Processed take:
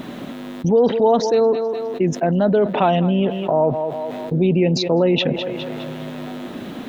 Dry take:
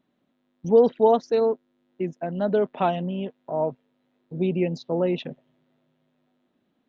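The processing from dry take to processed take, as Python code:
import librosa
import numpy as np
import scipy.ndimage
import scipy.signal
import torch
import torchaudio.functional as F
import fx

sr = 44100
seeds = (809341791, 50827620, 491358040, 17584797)

p1 = x + fx.echo_thinned(x, sr, ms=206, feedback_pct=29, hz=260.0, wet_db=-21, dry=0)
y = fx.env_flatten(p1, sr, amount_pct=70)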